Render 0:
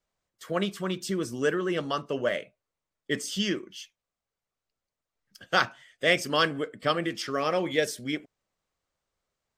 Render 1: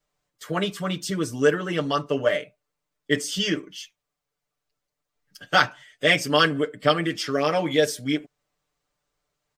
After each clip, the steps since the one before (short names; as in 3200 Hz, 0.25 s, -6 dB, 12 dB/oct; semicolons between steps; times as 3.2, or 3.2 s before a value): comb 6.8 ms, depth 93%; gain +2 dB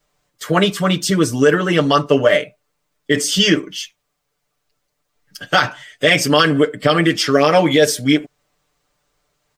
maximiser +12 dB; gain -1 dB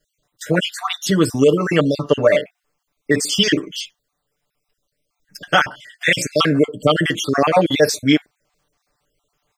random spectral dropouts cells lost 44%